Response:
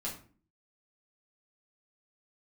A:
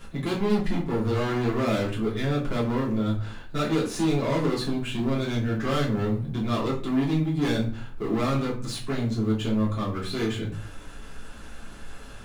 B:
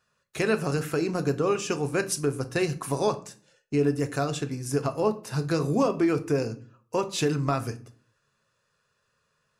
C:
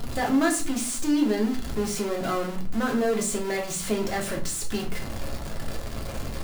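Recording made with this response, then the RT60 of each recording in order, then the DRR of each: A; 0.45, 0.45, 0.45 seconds; −6.5, 8.0, −0.5 decibels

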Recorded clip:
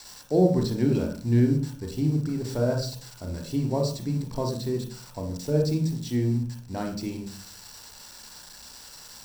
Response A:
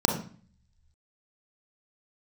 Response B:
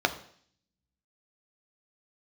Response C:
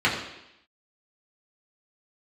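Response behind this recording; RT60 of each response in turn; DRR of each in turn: A; 0.45, 0.55, 0.85 seconds; 2.0, 6.5, −6.5 decibels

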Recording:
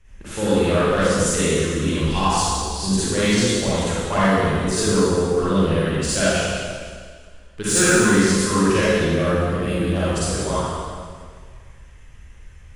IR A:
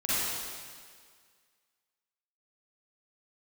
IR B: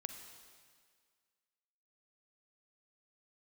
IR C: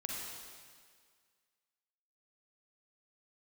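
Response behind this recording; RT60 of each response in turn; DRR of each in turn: A; 1.9, 1.9, 1.9 seconds; −12.0, 6.5, −2.5 decibels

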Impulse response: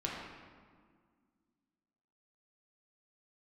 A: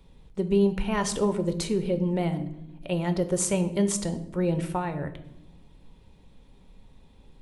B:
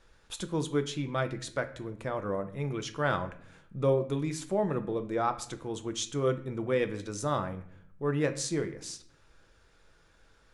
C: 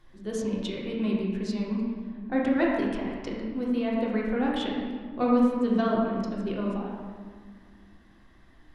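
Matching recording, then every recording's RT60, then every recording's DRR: C; non-exponential decay, 0.60 s, 1.8 s; 8.0, 7.5, −4.0 decibels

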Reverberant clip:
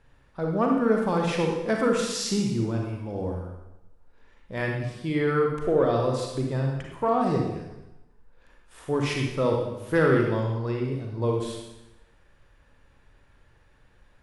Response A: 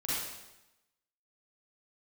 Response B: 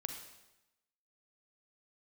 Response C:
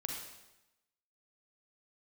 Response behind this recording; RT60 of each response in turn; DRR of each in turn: C; 0.95, 0.95, 0.95 seconds; −9.5, 4.5, 0.5 decibels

